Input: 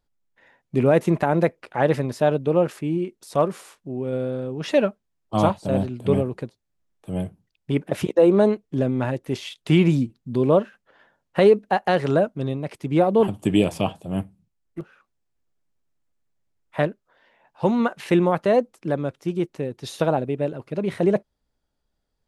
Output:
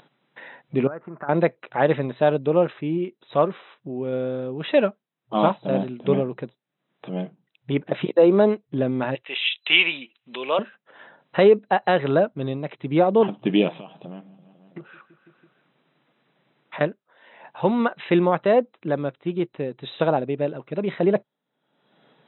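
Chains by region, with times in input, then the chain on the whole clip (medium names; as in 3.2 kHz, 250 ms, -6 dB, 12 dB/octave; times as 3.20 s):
0.87–1.29 s: compression 4:1, threshold -21 dBFS + four-pole ladder low-pass 1.5 kHz, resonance 70%
9.15–10.59 s: high-pass 750 Hz + peaking EQ 2.7 kHz +15 dB 0.88 oct
13.76–16.81 s: compression 20:1, threshold -34 dBFS + feedback delay 165 ms, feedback 57%, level -23.5 dB
whole clip: upward compressor, threshold -31 dBFS; bass shelf 220 Hz -5.5 dB; FFT band-pass 120–4000 Hz; trim +1.5 dB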